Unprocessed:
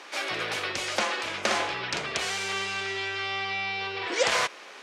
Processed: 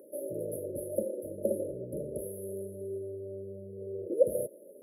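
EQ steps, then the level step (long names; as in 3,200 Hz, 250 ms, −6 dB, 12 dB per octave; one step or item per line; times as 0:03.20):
linear-phase brick-wall band-stop 620–10,000 Hz
flat-topped bell 1,100 Hz +11.5 dB
high-shelf EQ 8,400 Hz +9.5 dB
+1.0 dB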